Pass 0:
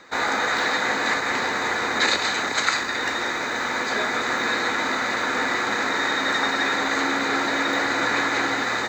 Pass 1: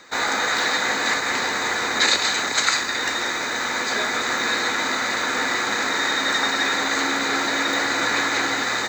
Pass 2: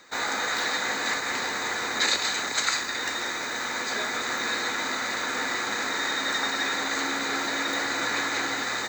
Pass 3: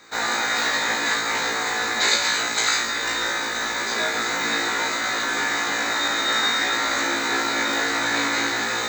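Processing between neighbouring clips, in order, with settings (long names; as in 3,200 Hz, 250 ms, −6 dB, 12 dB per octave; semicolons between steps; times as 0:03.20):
high-shelf EQ 3,800 Hz +10 dB; level −1 dB
high-shelf EQ 12,000 Hz +8 dB; level −6 dB
flutter between parallel walls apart 3 metres, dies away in 0.4 s; level +1.5 dB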